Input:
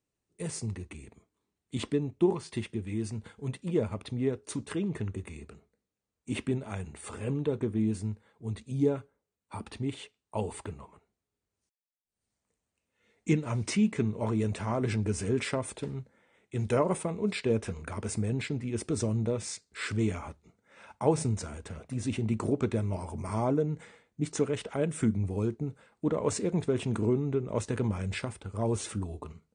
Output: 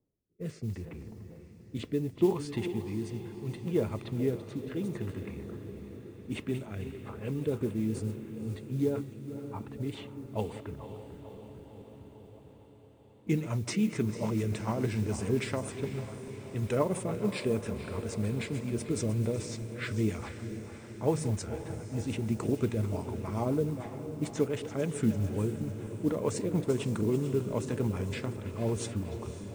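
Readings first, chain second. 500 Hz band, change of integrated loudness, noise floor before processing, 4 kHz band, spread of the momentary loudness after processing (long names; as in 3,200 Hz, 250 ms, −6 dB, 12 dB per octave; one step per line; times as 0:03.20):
−1.0 dB, −1.5 dB, below −85 dBFS, −2.5 dB, 13 LU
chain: feedback delay that plays each chunk backwards 223 ms, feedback 68%, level −13 dB
low-pass that shuts in the quiet parts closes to 590 Hz, open at −27 dBFS
reversed playback
upward compression, threshold −39 dBFS
reversed playback
rotating-speaker cabinet horn 0.7 Hz, later 7 Hz, at 0:06.34
noise that follows the level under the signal 29 dB
on a send: feedback delay with all-pass diffusion 528 ms, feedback 70%, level −13 dB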